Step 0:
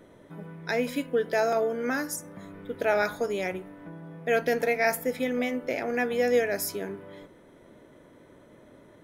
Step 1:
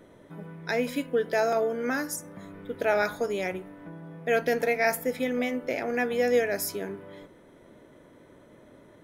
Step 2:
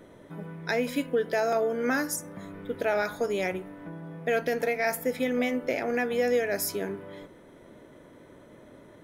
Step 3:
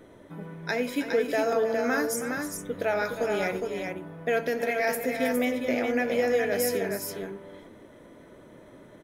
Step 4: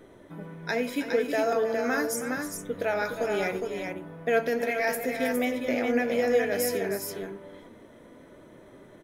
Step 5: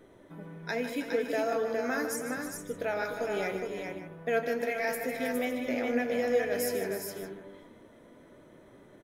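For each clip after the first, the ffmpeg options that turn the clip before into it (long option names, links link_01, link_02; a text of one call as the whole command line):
ffmpeg -i in.wav -af anull out.wav
ffmpeg -i in.wav -af "acontrast=85,alimiter=limit=-12dB:level=0:latency=1:release=272,volume=-5dB" out.wav
ffmpeg -i in.wav -filter_complex "[0:a]flanger=delay=2.5:depth=7:regen=-71:speed=0.26:shape=triangular,asplit=2[link_01][link_02];[link_02]aecho=0:1:89|318|412:0.141|0.282|0.562[link_03];[link_01][link_03]amix=inputs=2:normalize=0,volume=4dB" out.wav
ffmpeg -i in.wav -af "flanger=delay=2.5:depth=1.9:regen=82:speed=0.57:shape=sinusoidal,volume=4dB" out.wav
ffmpeg -i in.wav -filter_complex "[0:a]asplit=2[link_01][link_02];[link_02]adelay=151.6,volume=-9dB,highshelf=frequency=4000:gain=-3.41[link_03];[link_01][link_03]amix=inputs=2:normalize=0,volume=-4.5dB" out.wav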